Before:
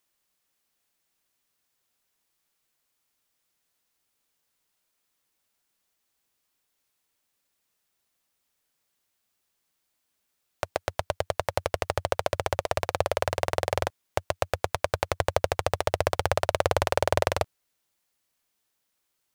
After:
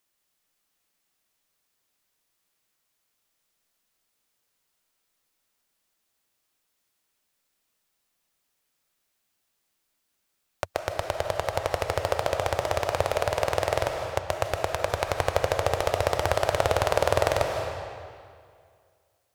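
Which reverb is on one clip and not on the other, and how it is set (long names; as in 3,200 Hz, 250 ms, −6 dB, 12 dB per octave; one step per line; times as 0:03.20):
comb and all-pass reverb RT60 2.1 s, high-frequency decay 0.85×, pre-delay 115 ms, DRR 3.5 dB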